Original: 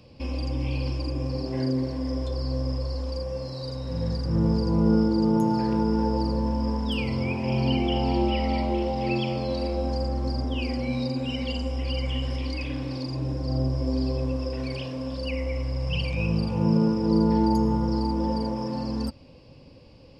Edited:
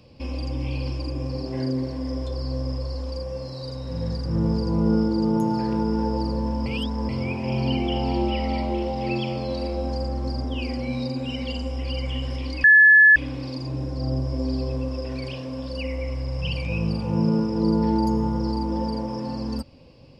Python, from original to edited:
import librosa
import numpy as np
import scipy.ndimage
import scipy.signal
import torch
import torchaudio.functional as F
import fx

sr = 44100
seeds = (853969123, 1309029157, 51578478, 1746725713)

y = fx.edit(x, sr, fx.reverse_span(start_s=6.66, length_s=0.43),
    fx.insert_tone(at_s=12.64, length_s=0.52, hz=1720.0, db=-9.0), tone=tone)